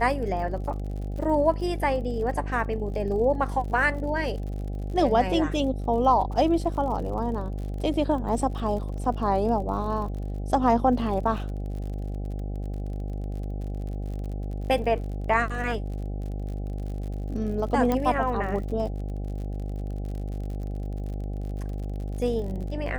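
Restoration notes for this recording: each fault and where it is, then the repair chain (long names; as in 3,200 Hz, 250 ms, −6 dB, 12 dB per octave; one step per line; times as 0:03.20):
mains buzz 50 Hz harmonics 16 −31 dBFS
surface crackle 54 per second −36 dBFS
0:17.92: click −13 dBFS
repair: click removal
hum removal 50 Hz, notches 16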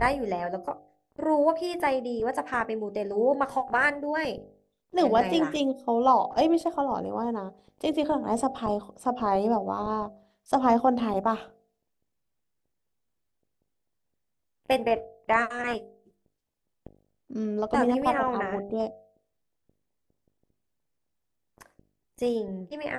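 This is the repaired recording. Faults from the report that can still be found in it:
none of them is left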